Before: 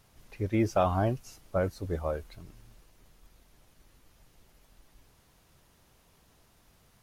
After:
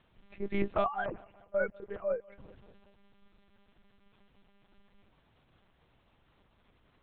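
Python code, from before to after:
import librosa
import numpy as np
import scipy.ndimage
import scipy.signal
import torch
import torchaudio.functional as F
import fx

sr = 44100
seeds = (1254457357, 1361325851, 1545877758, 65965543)

p1 = fx.sine_speech(x, sr, at=(0.84, 2.39))
p2 = p1 + fx.echo_feedback(p1, sr, ms=193, feedback_pct=56, wet_db=-24.0, dry=0)
p3 = fx.lpc_monotone(p2, sr, seeds[0], pitch_hz=200.0, order=8)
y = F.gain(torch.from_numpy(p3), -4.0).numpy()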